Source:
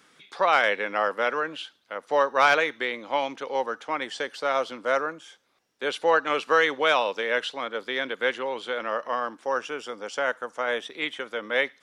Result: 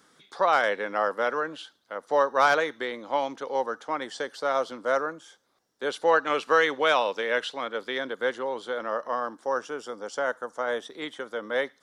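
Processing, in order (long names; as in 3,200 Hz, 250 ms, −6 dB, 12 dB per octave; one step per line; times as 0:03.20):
parametric band 2,500 Hz −10.5 dB 0.7 octaves, from 0:06.05 −4 dB, from 0:07.98 −14 dB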